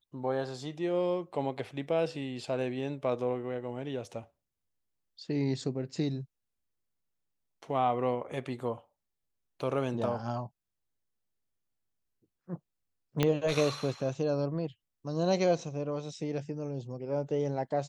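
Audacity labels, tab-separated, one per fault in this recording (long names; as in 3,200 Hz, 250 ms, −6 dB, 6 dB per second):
13.230000	13.230000	click −12 dBFS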